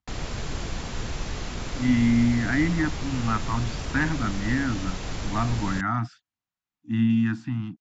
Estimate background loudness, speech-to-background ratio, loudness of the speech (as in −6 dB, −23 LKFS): −33.5 LKFS, 7.5 dB, −26.0 LKFS